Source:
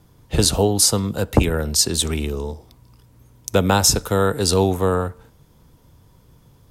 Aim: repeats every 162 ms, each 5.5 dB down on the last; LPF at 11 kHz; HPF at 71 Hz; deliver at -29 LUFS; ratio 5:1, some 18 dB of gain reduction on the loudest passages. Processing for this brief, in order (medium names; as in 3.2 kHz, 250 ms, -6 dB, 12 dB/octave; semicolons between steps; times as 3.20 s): high-pass 71 Hz; low-pass 11 kHz; compression 5:1, threshold -33 dBFS; feedback delay 162 ms, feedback 53%, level -5.5 dB; trim +5 dB